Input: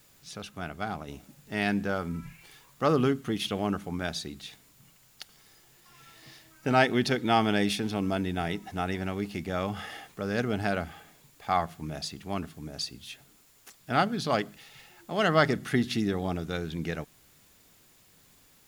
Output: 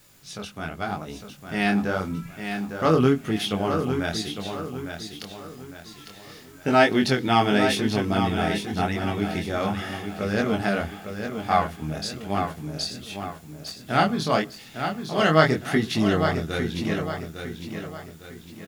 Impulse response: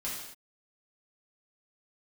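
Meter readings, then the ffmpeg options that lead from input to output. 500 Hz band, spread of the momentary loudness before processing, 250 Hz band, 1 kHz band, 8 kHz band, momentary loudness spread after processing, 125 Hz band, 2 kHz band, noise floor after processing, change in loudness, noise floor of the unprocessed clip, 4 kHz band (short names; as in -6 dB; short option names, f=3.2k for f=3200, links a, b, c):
+6.0 dB, 18 LU, +5.5 dB, +5.5 dB, +5.0 dB, 18 LU, +6.0 dB, +5.5 dB, -46 dBFS, +4.5 dB, -60 dBFS, +5.5 dB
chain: -filter_complex "[0:a]flanger=delay=18.5:depth=6.9:speed=0.88,asplit=2[a][b];[b]aecho=0:1:855|1710|2565|3420|4275:0.422|0.169|0.0675|0.027|0.0108[c];[a][c]amix=inputs=2:normalize=0,volume=7.5dB"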